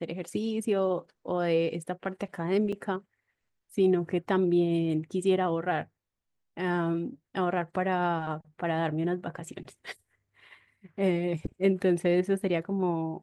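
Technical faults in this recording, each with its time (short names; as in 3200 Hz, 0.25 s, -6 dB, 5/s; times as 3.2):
2.72–2.73 gap 5.6 ms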